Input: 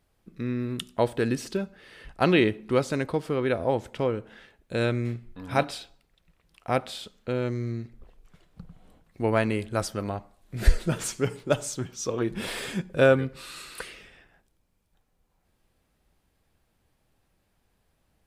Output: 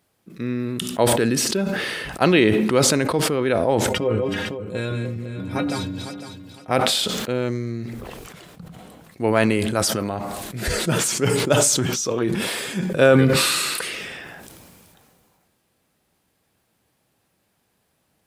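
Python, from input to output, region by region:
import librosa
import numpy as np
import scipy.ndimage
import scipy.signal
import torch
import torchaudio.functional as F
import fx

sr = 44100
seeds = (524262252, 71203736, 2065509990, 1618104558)

y = fx.chain(x, sr, fx.reverse_delay_fb(ms=253, feedback_pct=46, wet_db=-5.0),
    fx.low_shelf(hz=390.0, db=12.0),
    fx.stiff_resonator(f0_hz=93.0, decay_s=0.21, stiffness=0.008), at=(3.89, 6.71))
y = scipy.signal.sosfilt(scipy.signal.butter(2, 120.0, 'highpass', fs=sr, output='sos'), y)
y = fx.high_shelf(y, sr, hz=5400.0, db=5.0)
y = fx.sustainer(y, sr, db_per_s=23.0)
y = F.gain(torch.from_numpy(y), 4.0).numpy()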